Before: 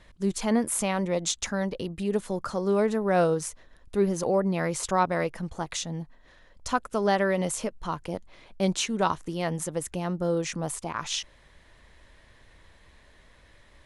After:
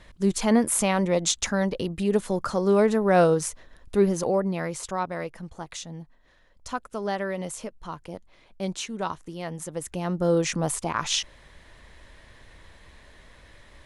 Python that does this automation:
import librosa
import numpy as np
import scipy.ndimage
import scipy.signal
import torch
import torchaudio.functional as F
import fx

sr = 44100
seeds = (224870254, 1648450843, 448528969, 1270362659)

y = fx.gain(x, sr, db=fx.line((3.96, 4.0), (4.95, -5.0), (9.54, -5.0), (10.34, 5.0)))